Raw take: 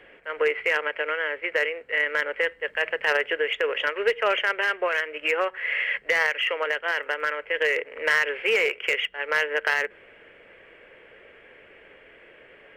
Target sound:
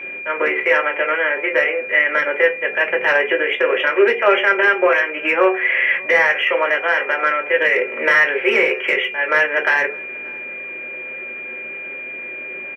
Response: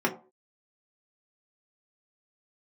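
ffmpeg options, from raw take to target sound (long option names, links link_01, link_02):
-filter_complex "[0:a]asplit=2[link_01][link_02];[link_02]alimiter=limit=-20.5dB:level=0:latency=1,volume=-1dB[link_03];[link_01][link_03]amix=inputs=2:normalize=0,asettb=1/sr,asplit=3[link_04][link_05][link_06];[link_04]atrim=end=7.784[link_07];[link_05]atrim=start=7.78:end=8.45,asetpts=PTS-STARTPTS,afade=type=in:duration=0.004:curve=qsin,afade=type=out:start_time=0.666:duration=0.004:curve=qsin,aeval=exprs='0.376*(cos(1*acos(clip(val(0)/0.376,-1,1)))-cos(1*PI/2))+0.00237*(cos(8*acos(clip(val(0)/0.376,-1,1)))-cos(8*PI/2))':channel_layout=same[link_08];[link_06]atrim=start=8.446[link_09];[link_07][link_08]acrossfade=duration=0.004:curve1=hsin:curve2=qsin[link_10];[link_10][link_09]acrossfade=duration=0.004:curve1=qsin:curve2=hsin,aeval=exprs='val(0)+0.0398*sin(2*PI*2400*n/s)':channel_layout=same,asplit=2[link_11][link_12];[link_12]adelay=583.1,volume=-25dB,highshelf=frequency=4000:gain=-13.1[link_13];[link_11][link_13]amix=inputs=2:normalize=0[link_14];[1:a]atrim=start_sample=2205[link_15];[link_14][link_15]afir=irnorm=-1:irlink=0,volume=-6.5dB"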